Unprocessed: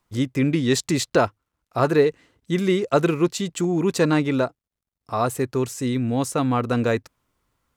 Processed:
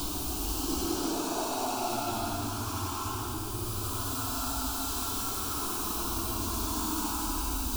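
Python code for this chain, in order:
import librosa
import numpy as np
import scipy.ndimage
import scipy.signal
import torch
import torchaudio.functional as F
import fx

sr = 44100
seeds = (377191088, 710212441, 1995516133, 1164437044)

p1 = np.sign(x) * np.sqrt(np.mean(np.square(x)))
p2 = fx.fixed_phaser(p1, sr, hz=520.0, stages=6)
p3 = p2 + fx.echo_alternate(p2, sr, ms=199, hz=2000.0, feedback_pct=89, wet_db=-11.5, dry=0)
p4 = fx.paulstretch(p3, sr, seeds[0], factor=14.0, window_s=0.1, from_s=1.09)
y = F.gain(torch.from_numpy(p4), -6.0).numpy()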